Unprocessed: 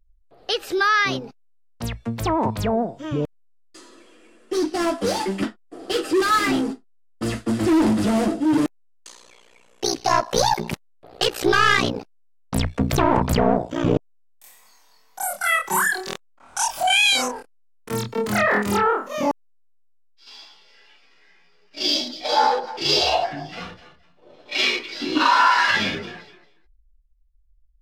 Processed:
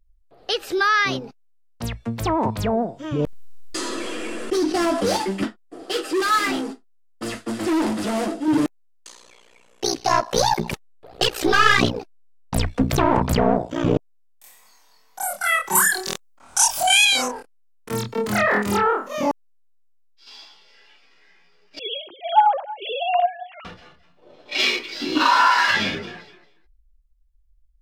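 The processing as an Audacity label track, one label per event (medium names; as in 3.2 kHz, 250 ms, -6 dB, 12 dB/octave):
3.190000	5.170000	level flattener amount 70%
5.830000	8.480000	peaking EQ 72 Hz -14 dB 2.9 oct
10.580000	12.840000	phaser 1.6 Hz, delay 4.3 ms, feedback 48%
15.750000	17.050000	tone controls bass +3 dB, treble +9 dB
21.790000	23.650000	formants replaced by sine waves
24.600000	25.740000	treble shelf 11 kHz +9.5 dB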